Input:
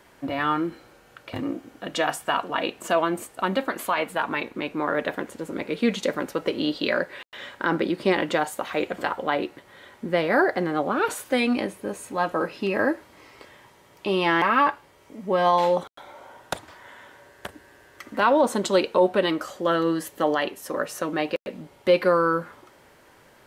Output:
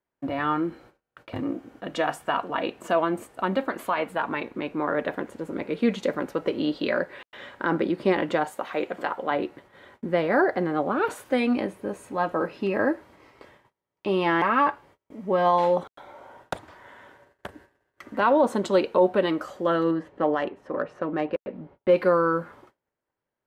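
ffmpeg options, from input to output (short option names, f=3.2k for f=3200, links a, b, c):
-filter_complex "[0:a]asettb=1/sr,asplit=3[a][b][c];[a]atrim=end=8.524[d];[b]atrim=start=8.52:end=9.31,asetpts=PTS-STARTPTS,afade=t=in:d=0.004:c=qsin,afade=t=out:st=0.786:d=0.004:c=qsin,highpass=f=260:p=1[e];[c]atrim=start=9.306[f];[d][e]acrossfade=d=0.004:c1=hsin:c2=qsin[g];[g][f]acrossfade=d=0.004:c1=qsin:c2=hsin,asettb=1/sr,asplit=3[h][i][j];[h]atrim=end=19.914[k];[i]atrim=start=19.91:end=21.96,asetpts=PTS-STARTPTS,afade=t=in:d=0.004:c=qsin,afade=t=out:st=2.046:d=0.004:c=qsin,adynamicsmooth=sensitivity=0.5:basefreq=2.3k[l];[j]atrim=start=21.956[m];[k][l]acrossfade=d=0.004:c1=hsin:c2=qsin[n];[n][m]acrossfade=d=0.004:c1=qsin:c2=hsin,agate=range=-31dB:threshold=-49dB:ratio=16:detection=peak,highshelf=f=2.7k:g=-10.5"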